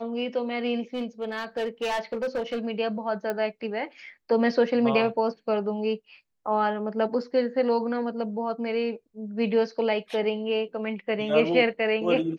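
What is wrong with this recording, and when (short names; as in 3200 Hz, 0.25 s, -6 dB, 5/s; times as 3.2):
0.94–2.66 clipped -24 dBFS
3.3 pop -16 dBFS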